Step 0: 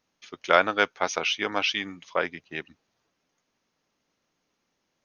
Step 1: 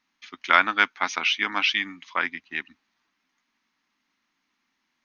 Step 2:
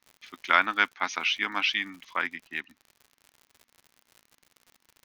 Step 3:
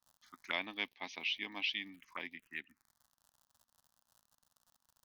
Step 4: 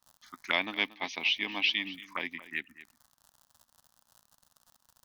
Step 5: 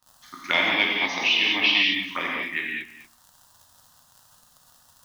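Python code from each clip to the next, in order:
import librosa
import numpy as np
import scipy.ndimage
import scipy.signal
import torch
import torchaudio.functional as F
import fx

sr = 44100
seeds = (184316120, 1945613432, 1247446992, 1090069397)

y1 = fx.graphic_eq(x, sr, hz=(125, 250, 500, 1000, 2000, 4000), db=(-9, 11, -12, 8, 10, 6))
y1 = y1 * 10.0 ** (-5.5 / 20.0)
y2 = fx.dmg_crackle(y1, sr, seeds[0], per_s=98.0, level_db=-37.0)
y2 = y2 * 10.0 ** (-3.5 / 20.0)
y3 = fx.env_phaser(y2, sr, low_hz=380.0, high_hz=1400.0, full_db=-28.0)
y3 = y3 * 10.0 ** (-8.5 / 20.0)
y4 = y3 + 10.0 ** (-16.5 / 20.0) * np.pad(y3, (int(231 * sr / 1000.0), 0))[:len(y3)]
y4 = y4 * 10.0 ** (8.5 / 20.0)
y5 = fx.rev_gated(y4, sr, seeds[1], gate_ms=250, shape='flat', drr_db=-3.5)
y5 = y5 * 10.0 ** (4.5 / 20.0)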